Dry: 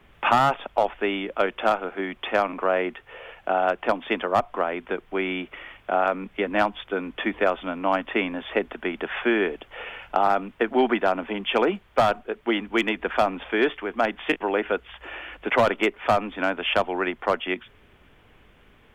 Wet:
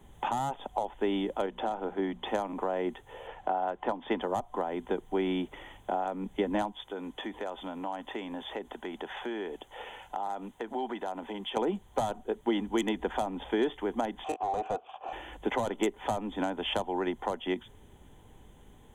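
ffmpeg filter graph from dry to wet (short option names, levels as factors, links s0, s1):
-filter_complex "[0:a]asettb=1/sr,asplit=3[s0][s1][s2];[s0]atrim=end=1.464[s3];[s1]atrim=start=1.46:end=2.27,asetpts=PTS-STARTPTS,afade=t=in:d=0.004:c=qsin,afade=t=out:st=0.806:d=0.004:c=qsin,highshelf=f=5100:g=-11,acompressor=threshold=0.0631:ratio=2:attack=3.2:release=140:knee=1:detection=peak,bandreject=f=60:t=h:w=6,bandreject=f=120:t=h:w=6,bandreject=f=180:t=h:w=6,bandreject=f=240:t=h:w=6[s4];[s2]atrim=start=2.266[s5];[s3][s4]acrossfade=d=0.004:c1=hsin:c2=qsin[s6];[s6][s5]acrossfade=d=0.004:c1=qsin:c2=hsin,asettb=1/sr,asplit=3[s7][s8][s9];[s7]atrim=end=3.274[s10];[s8]atrim=start=3.27:end=4.21,asetpts=PTS-STARTPTS,afade=t=in:d=0.004:c=qsin,afade=t=out:st=0.936:d=0.004:c=qsin,lowpass=f=2800:p=1,equalizer=f=1400:w=0.47:g=5.5[s11];[s9]atrim=start=4.206[s12];[s10][s11]acrossfade=d=0.004:c1=hsin:c2=qsin[s13];[s13][s12]acrossfade=d=0.004:c1=qsin:c2=hsin,asettb=1/sr,asplit=3[s14][s15][s16];[s14]atrim=end=6.724[s17];[s15]atrim=start=6.72:end=11.57,asetpts=PTS-STARTPTS,afade=t=in:d=0.004:c=qsin,afade=t=out:st=4.846:d=0.004:c=qsin,acompressor=threshold=0.0355:ratio=3:attack=3.2:release=140:knee=1:detection=peak,lowshelf=f=330:g=-10[s18];[s16]atrim=start=11.566[s19];[s17][s18]acrossfade=d=0.004:c1=hsin:c2=qsin[s20];[s20][s19]acrossfade=d=0.004:c1=qsin:c2=hsin,asettb=1/sr,asplit=3[s21][s22][s23];[s21]atrim=end=14.244[s24];[s22]atrim=start=14.24:end=15.13,asetpts=PTS-STARTPTS,afade=t=in:d=0.004:c=qsin,afade=t=out:st=0.886:d=0.004:c=qsin,acontrast=54,asplit=3[s25][s26][s27];[s25]bandpass=f=730:t=q:w=8,volume=1[s28];[s26]bandpass=f=1090:t=q:w=8,volume=0.501[s29];[s27]bandpass=f=2440:t=q:w=8,volume=0.355[s30];[s28][s29][s30]amix=inputs=3:normalize=0,asplit=2[s31][s32];[s32]highpass=f=720:p=1,volume=10,asoftclip=type=tanh:threshold=0.15[s33];[s31][s33]amix=inputs=2:normalize=0,lowpass=f=1000:p=1,volume=0.501[s34];[s23]atrim=start=15.126[s35];[s24][s34]acrossfade=d=0.004:c1=hsin:c2=qsin[s36];[s36][s35]acrossfade=d=0.004:c1=qsin:c2=hsin,superequalizer=9b=2.51:12b=0.447:14b=0.398:15b=2.51:16b=2.24,acompressor=threshold=0.0708:ratio=5,equalizer=f=1400:w=0.62:g=-13,volume=1.33"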